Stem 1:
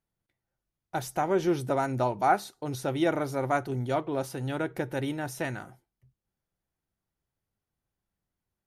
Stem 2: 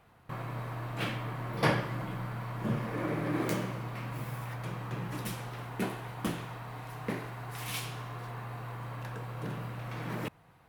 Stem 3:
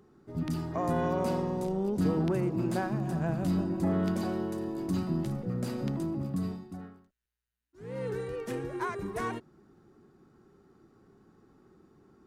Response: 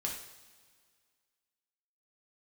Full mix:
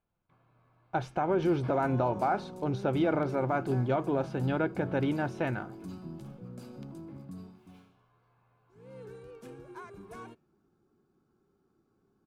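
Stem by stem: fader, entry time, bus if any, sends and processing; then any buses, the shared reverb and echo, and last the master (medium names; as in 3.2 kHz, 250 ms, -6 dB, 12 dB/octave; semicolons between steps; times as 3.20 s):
+2.5 dB, 0.00 s, no send, low-pass 2.5 kHz 12 dB/octave; peak limiter -22 dBFS, peak gain reduction 10.5 dB
-12.0 dB, 0.00 s, no send, peaking EQ 12 kHz -13 dB 1.8 oct; feedback comb 86 Hz, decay 0.44 s, harmonics all, mix 80%; upward expansion 1.5:1, over -46 dBFS
-12.0 dB, 0.95 s, no send, none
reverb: none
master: Butterworth band-stop 1.9 kHz, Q 8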